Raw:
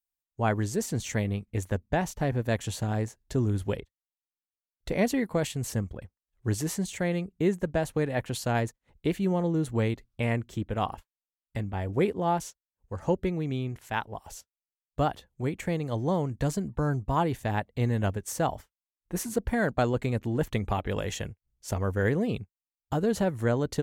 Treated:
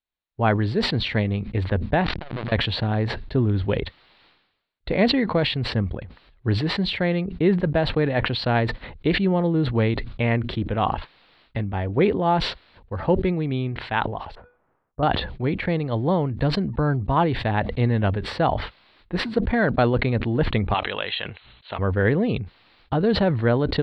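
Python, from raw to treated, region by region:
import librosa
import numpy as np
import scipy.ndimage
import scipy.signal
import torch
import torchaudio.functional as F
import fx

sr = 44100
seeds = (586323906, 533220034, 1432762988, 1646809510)

y = fx.chain(x, sr, fx.clip_1bit(),
    fx.air_absorb(metres=110.0),
    fx.transformer_sat(knee_hz=130.0), at=(2.04, 2.52))
y = fx.chain(y, sr, fx.lowpass(hz=1300.0, slope=24),
    fx.comb_fb(f0_hz=490.0, decay_s=0.33, harmonics='odd', damping=0.0, mix_pct=50), at=(14.35, 15.03))
y = fx.chain(y, sr, fx.cheby_ripple(hz=4100.0, ripple_db=3),
    fx.tilt_eq(slope=4.5), at=(20.74, 21.79))
y = scipy.signal.sosfilt(scipy.signal.ellip(4, 1.0, 40, 4200.0, 'lowpass', fs=sr, output='sos'), y)
y = fx.sustainer(y, sr, db_per_s=65.0)
y = y * librosa.db_to_amplitude(6.5)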